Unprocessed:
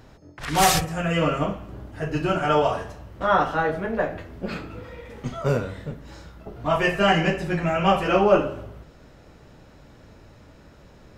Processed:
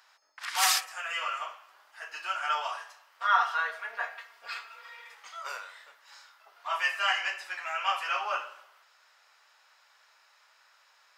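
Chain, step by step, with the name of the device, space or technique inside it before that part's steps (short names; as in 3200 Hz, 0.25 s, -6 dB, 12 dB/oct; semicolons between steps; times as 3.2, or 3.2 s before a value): 3.19–5.15 comb 4.3 ms, depth 90%; headphones lying on a table (HPF 1000 Hz 24 dB/oct; bell 4900 Hz +4.5 dB 0.23 oct); gain -3.5 dB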